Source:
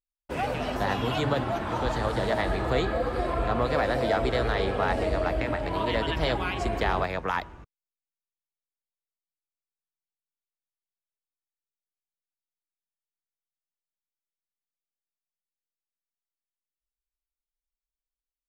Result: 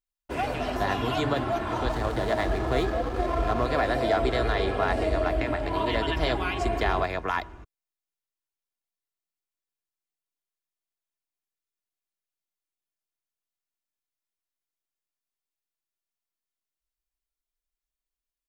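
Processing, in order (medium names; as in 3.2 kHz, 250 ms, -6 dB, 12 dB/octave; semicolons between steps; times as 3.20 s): comb 2.9 ms, depth 38%; 1.89–3.66 s: hysteresis with a dead band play -31.5 dBFS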